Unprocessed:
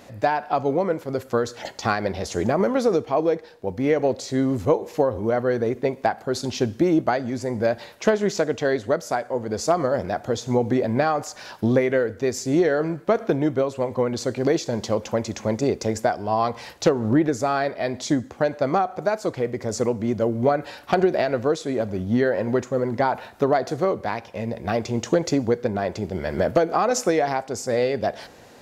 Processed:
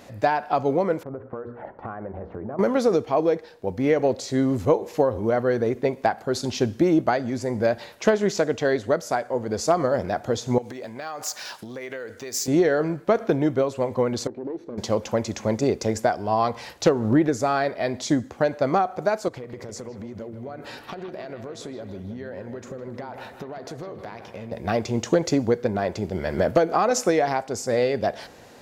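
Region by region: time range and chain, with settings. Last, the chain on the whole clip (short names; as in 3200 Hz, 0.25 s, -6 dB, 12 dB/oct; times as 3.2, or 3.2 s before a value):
1.03–2.59 LPF 1400 Hz 24 dB/oct + notches 60/120/180/240/300/360/420/480 Hz + compressor 5:1, threshold -30 dBFS
10.58–12.48 compressor 12:1, threshold -27 dBFS + tilt +3 dB/oct + decimation joined by straight lines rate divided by 2×
14.27–14.78 minimum comb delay 0.49 ms + band-pass 340 Hz, Q 1.7 + compressor 2.5:1, threshold -31 dBFS
19.28–24.52 compressor 10:1, threshold -32 dBFS + analogue delay 0.158 s, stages 4096, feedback 58%, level -10 dB
whole clip: dry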